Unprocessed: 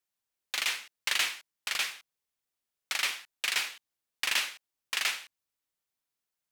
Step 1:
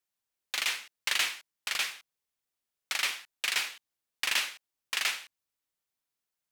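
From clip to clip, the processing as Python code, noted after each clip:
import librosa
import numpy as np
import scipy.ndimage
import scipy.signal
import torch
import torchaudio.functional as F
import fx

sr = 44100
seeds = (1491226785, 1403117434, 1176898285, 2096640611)

y = x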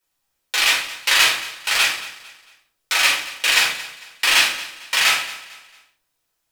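y = fx.echo_feedback(x, sr, ms=225, feedback_pct=36, wet_db=-16.5)
y = fx.room_shoebox(y, sr, seeds[0], volume_m3=280.0, walls='furnished', distance_m=4.6)
y = F.gain(torch.from_numpy(y), 6.5).numpy()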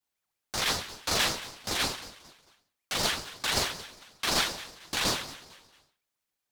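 y = fx.ring_lfo(x, sr, carrier_hz=1600.0, swing_pct=55, hz=5.3)
y = F.gain(torch.from_numpy(y), -8.5).numpy()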